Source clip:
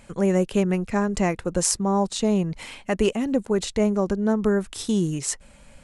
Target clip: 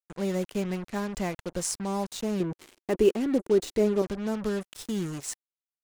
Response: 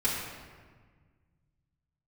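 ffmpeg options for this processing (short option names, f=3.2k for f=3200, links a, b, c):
-filter_complex "[0:a]acrusher=bits=4:mix=0:aa=0.5,asettb=1/sr,asplit=3[a][b][c];[a]atrim=end=2.404[d];[b]atrim=start=2.4:end=4.02,asetpts=PTS-STARTPTS,afade=t=in:d=0.004:c=qsin,afade=t=out:st=1.616:d=0.004:c=qsin,equalizer=f=360:w=1.7:g=12.5[e];[c]atrim=start=4.016[f];[d][e]acrossfade=d=0.004:c1=hsin:c2=qsin[g];[g][f]acrossfade=d=0.004:c1=qsin:c2=hsin,volume=-8.5dB"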